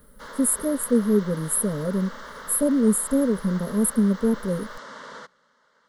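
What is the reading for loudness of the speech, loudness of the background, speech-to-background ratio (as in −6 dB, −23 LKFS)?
−23.0 LKFS, −40.0 LKFS, 17.0 dB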